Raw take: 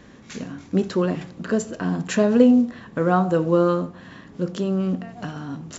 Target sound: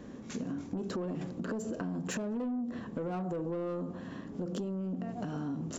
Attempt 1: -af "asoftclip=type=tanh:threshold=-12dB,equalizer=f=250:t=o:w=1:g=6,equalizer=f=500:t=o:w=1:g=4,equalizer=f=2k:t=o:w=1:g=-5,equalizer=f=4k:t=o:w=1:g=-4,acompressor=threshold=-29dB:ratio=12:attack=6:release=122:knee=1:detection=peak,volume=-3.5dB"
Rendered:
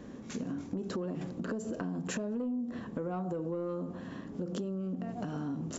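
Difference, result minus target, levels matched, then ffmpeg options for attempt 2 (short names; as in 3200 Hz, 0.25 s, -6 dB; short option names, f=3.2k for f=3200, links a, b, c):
soft clip: distortion -7 dB
-af "asoftclip=type=tanh:threshold=-19.5dB,equalizer=f=250:t=o:w=1:g=6,equalizer=f=500:t=o:w=1:g=4,equalizer=f=2k:t=o:w=1:g=-5,equalizer=f=4k:t=o:w=1:g=-4,acompressor=threshold=-29dB:ratio=12:attack=6:release=122:knee=1:detection=peak,volume=-3.5dB"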